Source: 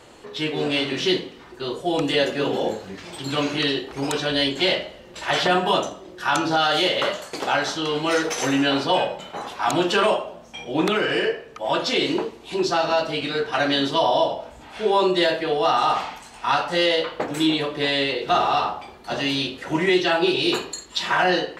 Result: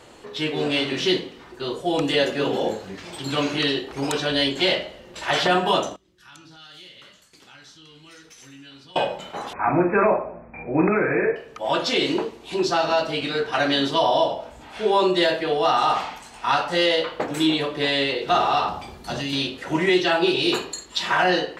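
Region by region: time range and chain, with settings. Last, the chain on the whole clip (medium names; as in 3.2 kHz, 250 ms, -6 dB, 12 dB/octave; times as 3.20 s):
5.96–8.96 s: amplifier tone stack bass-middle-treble 6-0-2 + compression 1.5:1, threshold -49 dBFS
9.53–11.36 s: brick-wall FIR low-pass 2.6 kHz + bass shelf 210 Hz +7.5 dB
18.68–19.33 s: tone controls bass +10 dB, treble +7 dB + compression, threshold -24 dBFS
whole clip: none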